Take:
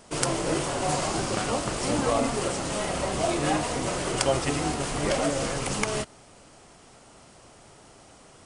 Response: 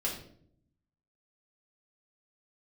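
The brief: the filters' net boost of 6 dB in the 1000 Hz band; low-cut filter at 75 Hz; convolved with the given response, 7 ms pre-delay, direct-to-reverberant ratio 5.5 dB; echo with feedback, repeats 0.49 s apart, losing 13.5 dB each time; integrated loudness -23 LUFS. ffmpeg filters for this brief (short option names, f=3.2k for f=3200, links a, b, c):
-filter_complex "[0:a]highpass=75,equalizer=f=1k:t=o:g=8,aecho=1:1:490|980:0.211|0.0444,asplit=2[a][b];[1:a]atrim=start_sample=2205,adelay=7[c];[b][c]afir=irnorm=-1:irlink=0,volume=-10dB[d];[a][d]amix=inputs=2:normalize=0,volume=0.5dB"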